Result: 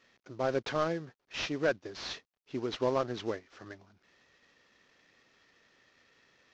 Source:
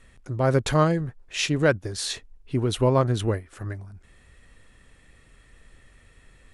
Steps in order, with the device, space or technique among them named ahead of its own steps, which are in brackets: early wireless headset (high-pass 270 Hz 12 dB/octave; CVSD coder 32 kbps); trim -6.5 dB

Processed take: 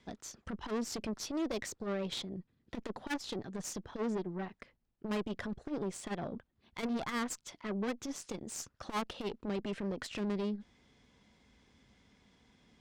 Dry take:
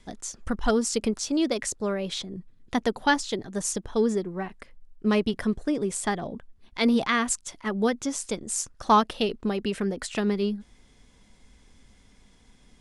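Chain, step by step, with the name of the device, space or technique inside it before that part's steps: valve radio (band-pass 80–5000 Hz; valve stage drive 28 dB, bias 0.6; transformer saturation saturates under 180 Hz); trim -2 dB

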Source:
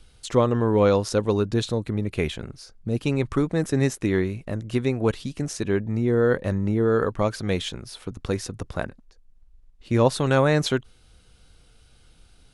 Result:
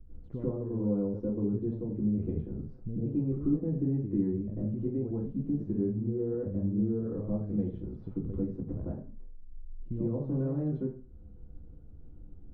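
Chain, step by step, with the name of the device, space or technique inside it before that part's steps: television next door (compression 3:1, threshold -37 dBFS, peak gain reduction 17.5 dB; low-pass 260 Hz 12 dB/octave; reverberation RT60 0.40 s, pre-delay 88 ms, DRR -9 dB)

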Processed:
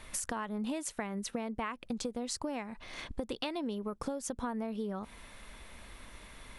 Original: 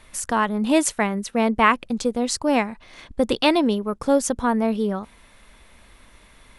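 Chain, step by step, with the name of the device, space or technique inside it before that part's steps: serial compression, peaks first (compression, threshold -27 dBFS, peak gain reduction 15 dB; compression 2.5:1, threshold -36 dBFS, peak gain reduction 8.5 dB)

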